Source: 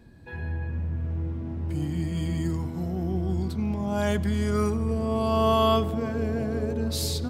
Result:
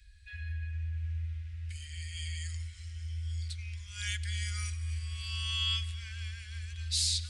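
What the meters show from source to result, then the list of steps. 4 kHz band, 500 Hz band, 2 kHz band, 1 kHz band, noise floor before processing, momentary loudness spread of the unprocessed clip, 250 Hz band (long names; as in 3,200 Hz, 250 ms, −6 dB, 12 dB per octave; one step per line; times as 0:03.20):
+2.5 dB, below −40 dB, −2.5 dB, −26.5 dB, −35 dBFS, 9 LU, below −40 dB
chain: downsampling to 22,050 Hz
inverse Chebyshev band-stop filter 150–900 Hz, stop band 50 dB
on a send: echo machine with several playback heads 271 ms, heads first and second, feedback 65%, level −23 dB
on the sum: level +2.5 dB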